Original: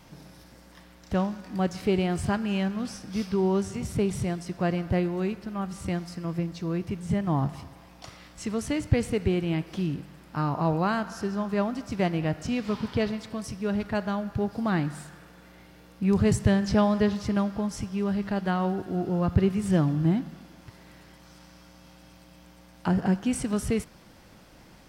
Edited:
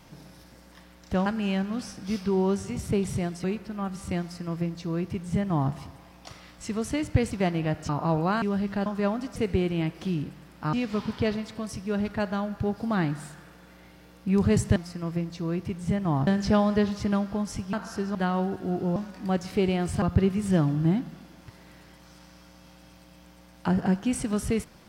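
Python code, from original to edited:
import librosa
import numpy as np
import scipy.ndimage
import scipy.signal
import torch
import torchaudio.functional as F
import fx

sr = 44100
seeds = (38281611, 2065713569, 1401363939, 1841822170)

y = fx.edit(x, sr, fx.move(start_s=1.26, length_s=1.06, to_s=19.22),
    fx.cut(start_s=4.5, length_s=0.71),
    fx.duplicate(start_s=5.98, length_s=1.51, to_s=16.51),
    fx.swap(start_s=9.08, length_s=1.37, other_s=11.9, other_length_s=0.58),
    fx.swap(start_s=10.98, length_s=0.42, other_s=17.97, other_length_s=0.44), tone=tone)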